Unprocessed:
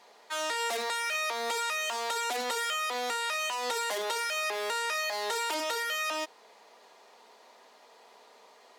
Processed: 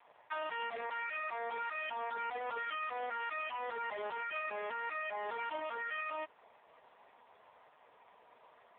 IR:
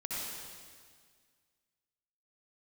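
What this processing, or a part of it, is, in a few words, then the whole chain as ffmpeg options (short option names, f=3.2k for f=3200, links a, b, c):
voicemail: -af "highpass=440,lowpass=2.7k,acompressor=threshold=-35dB:ratio=10" -ar 8000 -c:a libopencore_amrnb -b:a 4750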